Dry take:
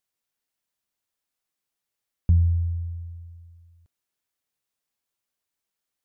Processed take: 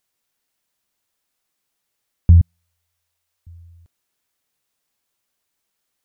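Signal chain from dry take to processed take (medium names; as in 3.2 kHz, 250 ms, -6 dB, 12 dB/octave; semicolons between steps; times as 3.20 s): 2.41–3.47 s: high-pass 440 Hz 24 dB/octave; trim +8.5 dB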